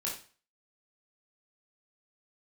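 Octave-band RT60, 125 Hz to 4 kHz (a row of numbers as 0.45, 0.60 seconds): 0.40, 0.40, 0.40, 0.40, 0.40, 0.40 seconds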